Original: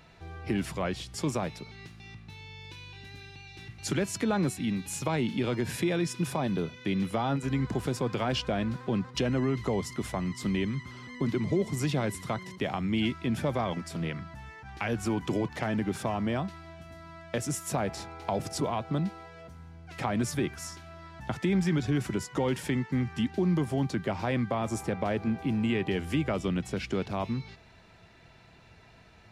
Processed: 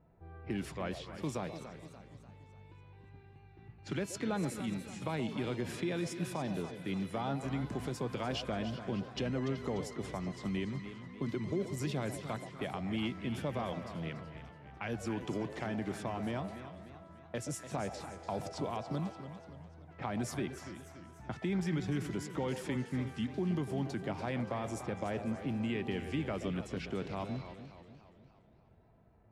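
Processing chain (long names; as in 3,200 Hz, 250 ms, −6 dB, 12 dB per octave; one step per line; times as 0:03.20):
low-pass that shuts in the quiet parts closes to 650 Hz, open at −27 dBFS
echo through a band-pass that steps 126 ms, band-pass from 570 Hz, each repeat 1.4 octaves, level −7.5 dB
feedback echo with a swinging delay time 291 ms, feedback 49%, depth 140 cents, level −11.5 dB
level −7.5 dB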